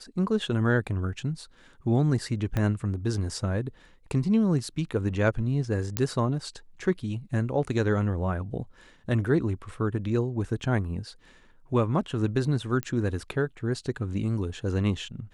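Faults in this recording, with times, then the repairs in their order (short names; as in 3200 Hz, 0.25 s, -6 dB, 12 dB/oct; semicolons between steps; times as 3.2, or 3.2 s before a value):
2.57 pop -15 dBFS
5.97 pop -8 dBFS
12.83 pop -17 dBFS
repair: de-click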